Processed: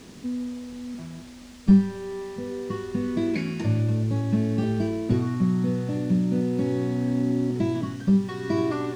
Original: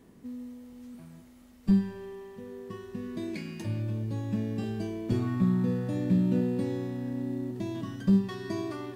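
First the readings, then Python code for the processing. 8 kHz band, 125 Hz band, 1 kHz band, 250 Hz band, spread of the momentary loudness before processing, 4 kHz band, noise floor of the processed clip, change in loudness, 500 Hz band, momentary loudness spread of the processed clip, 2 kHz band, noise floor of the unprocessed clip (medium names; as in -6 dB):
no reading, +5.5 dB, +7.0 dB, +5.5 dB, 18 LU, +6.0 dB, -44 dBFS, +5.0 dB, +7.0 dB, 11 LU, +7.0 dB, -54 dBFS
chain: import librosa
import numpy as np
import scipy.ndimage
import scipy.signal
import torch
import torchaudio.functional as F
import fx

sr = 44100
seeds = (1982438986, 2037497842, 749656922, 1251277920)

y = fx.peak_eq(x, sr, hz=3100.0, db=-3.5, octaves=0.36)
y = fx.rider(y, sr, range_db=5, speed_s=0.5)
y = fx.dmg_noise_colour(y, sr, seeds[0], colour='blue', level_db=-46.0)
y = fx.air_absorb(y, sr, metres=110.0)
y = y * 10.0 ** (5.5 / 20.0)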